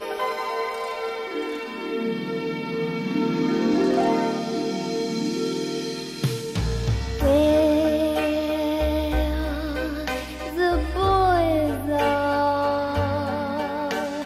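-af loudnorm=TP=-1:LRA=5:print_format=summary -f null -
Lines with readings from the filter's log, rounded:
Input Integrated:    -23.9 LUFS
Input True Peak:      -9.0 dBTP
Input LRA:             3.2 LU
Input Threshold:     -33.9 LUFS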